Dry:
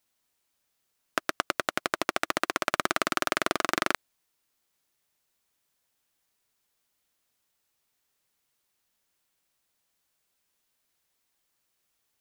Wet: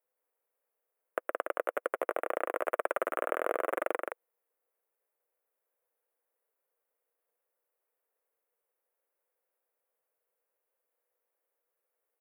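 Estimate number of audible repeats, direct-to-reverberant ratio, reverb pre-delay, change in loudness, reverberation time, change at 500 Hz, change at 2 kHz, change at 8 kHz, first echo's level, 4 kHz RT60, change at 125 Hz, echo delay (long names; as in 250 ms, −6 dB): 1, no reverb audible, no reverb audible, −5.0 dB, no reverb audible, +2.0 dB, −8.5 dB, −17.5 dB, −4.0 dB, no reverb audible, below −25 dB, 171 ms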